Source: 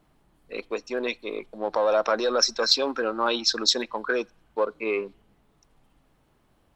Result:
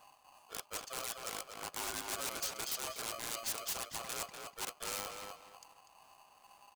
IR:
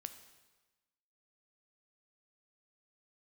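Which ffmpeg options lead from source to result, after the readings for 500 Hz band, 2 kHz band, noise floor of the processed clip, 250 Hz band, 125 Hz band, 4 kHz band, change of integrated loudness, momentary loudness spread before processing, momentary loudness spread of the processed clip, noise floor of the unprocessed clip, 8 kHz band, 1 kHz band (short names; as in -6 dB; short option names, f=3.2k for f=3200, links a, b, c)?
-23.0 dB, -13.5 dB, -65 dBFS, -21.5 dB, n/a, -16.5 dB, -14.5 dB, 12 LU, 10 LU, -65 dBFS, -5.0 dB, -13.5 dB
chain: -filter_complex "[0:a]highpass=44,tremolo=f=2.3:d=0.48,equalizer=f=98:w=4.5:g=12,areverse,acompressor=threshold=-40dB:ratio=5,areverse,aeval=exprs='(mod(56.2*val(0)+1,2)-1)/56.2':c=same,equalizer=f=125:t=o:w=1:g=3,equalizer=f=500:t=o:w=1:g=-7,equalizer=f=1k:t=o:w=1:g=-6,equalizer=f=2k:t=o:w=1:g=-6,equalizer=f=4k:t=o:w=1:g=-3,equalizer=f=8k:t=o:w=1:g=7,asplit=2[a][b];[b]adelay=244,lowpass=f=3.2k:p=1,volume=-4dB,asplit=2[c][d];[d]adelay=244,lowpass=f=3.2k:p=1,volume=0.27,asplit=2[e][f];[f]adelay=244,lowpass=f=3.2k:p=1,volume=0.27,asplit=2[g][h];[h]adelay=244,lowpass=f=3.2k:p=1,volume=0.27[i];[c][e][g][i]amix=inputs=4:normalize=0[j];[a][j]amix=inputs=2:normalize=0,aeval=exprs='val(0)*sgn(sin(2*PI*910*n/s))':c=same,volume=3.5dB"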